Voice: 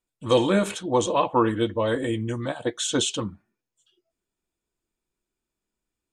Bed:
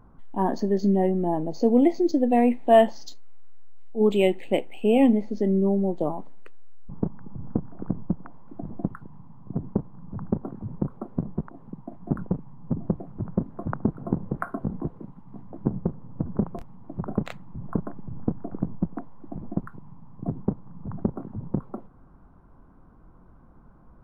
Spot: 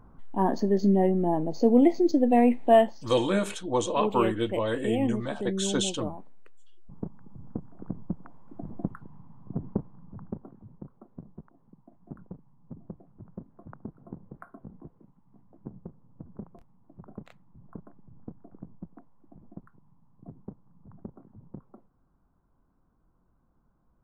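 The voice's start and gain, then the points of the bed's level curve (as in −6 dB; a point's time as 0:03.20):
2.80 s, −4.5 dB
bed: 0:02.69 −0.5 dB
0:02.99 −9 dB
0:07.57 −9 dB
0:08.66 −3.5 dB
0:09.73 −3.5 dB
0:10.78 −16.5 dB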